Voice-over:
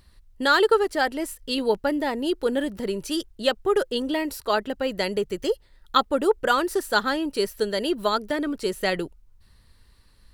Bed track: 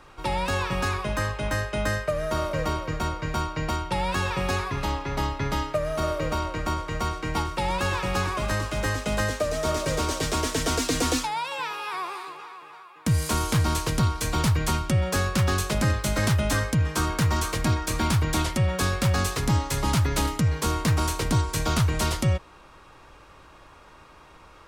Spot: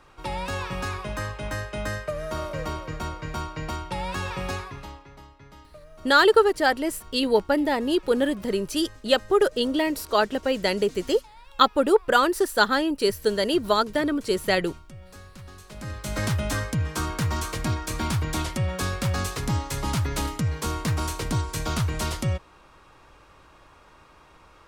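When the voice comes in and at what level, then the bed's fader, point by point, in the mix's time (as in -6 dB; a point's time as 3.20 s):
5.65 s, +2.0 dB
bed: 4.51 s -4 dB
5.26 s -22 dB
15.56 s -22 dB
16.18 s -3 dB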